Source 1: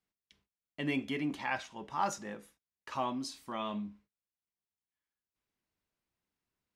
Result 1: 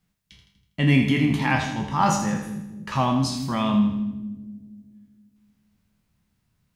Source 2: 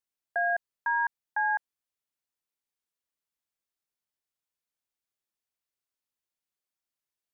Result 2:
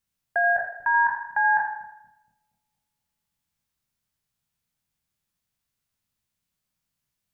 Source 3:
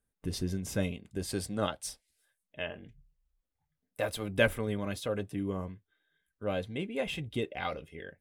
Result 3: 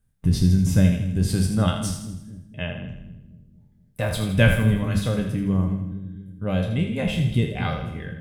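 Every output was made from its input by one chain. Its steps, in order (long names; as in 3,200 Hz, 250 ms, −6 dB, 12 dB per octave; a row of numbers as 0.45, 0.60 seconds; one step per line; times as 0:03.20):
peak hold with a decay on every bin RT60 0.36 s
low shelf with overshoot 240 Hz +12 dB, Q 1.5
mains-hum notches 50/100/150/200 Hz
echo with a time of its own for lows and highs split 360 Hz, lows 236 ms, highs 81 ms, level −8 dB
loudness normalisation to −23 LKFS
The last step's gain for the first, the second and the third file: +10.0, +5.5, +4.5 decibels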